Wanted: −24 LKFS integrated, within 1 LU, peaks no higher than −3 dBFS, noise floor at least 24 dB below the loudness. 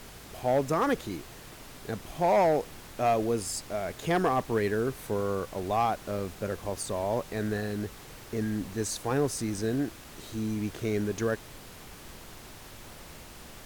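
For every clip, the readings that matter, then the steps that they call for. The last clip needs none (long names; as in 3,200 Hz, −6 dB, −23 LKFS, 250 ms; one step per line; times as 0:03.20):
share of clipped samples 0.4%; peaks flattened at −18.5 dBFS; background noise floor −48 dBFS; target noise floor −54 dBFS; integrated loudness −30.0 LKFS; sample peak −18.5 dBFS; target loudness −24.0 LKFS
→ clipped peaks rebuilt −18.5 dBFS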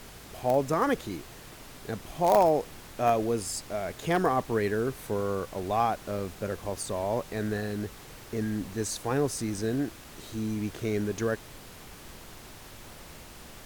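share of clipped samples 0.0%; background noise floor −48 dBFS; target noise floor −54 dBFS
→ noise reduction from a noise print 6 dB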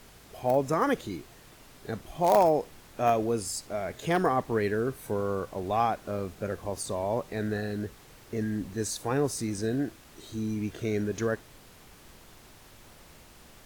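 background noise floor −53 dBFS; target noise floor −54 dBFS
→ noise reduction from a noise print 6 dB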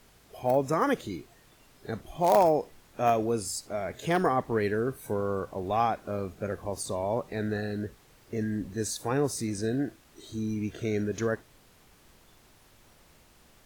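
background noise floor −59 dBFS; integrated loudness −29.5 LKFS; sample peak −9.5 dBFS; target loudness −24.0 LKFS
→ level +5.5 dB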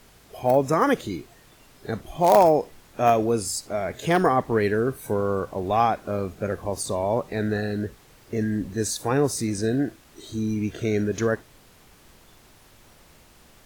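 integrated loudness −24.0 LKFS; sample peak −4.0 dBFS; background noise floor −54 dBFS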